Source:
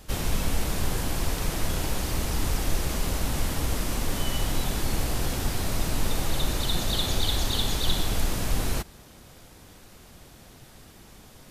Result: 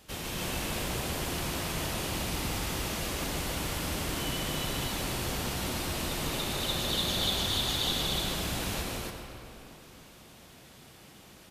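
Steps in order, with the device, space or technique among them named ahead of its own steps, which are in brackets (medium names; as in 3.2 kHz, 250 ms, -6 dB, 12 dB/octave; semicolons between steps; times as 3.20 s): stadium PA (high-pass 130 Hz 6 dB/octave; peaking EQ 2.9 kHz +4 dB 0.93 oct; loudspeakers at several distances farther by 53 m -4 dB, 97 m -2 dB; reverberation RT60 3.1 s, pre-delay 87 ms, DRR 4 dB); trim -6.5 dB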